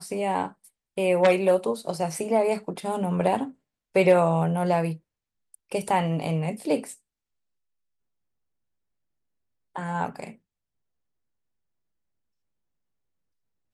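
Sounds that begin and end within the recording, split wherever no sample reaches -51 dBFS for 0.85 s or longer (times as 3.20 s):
9.75–10.36 s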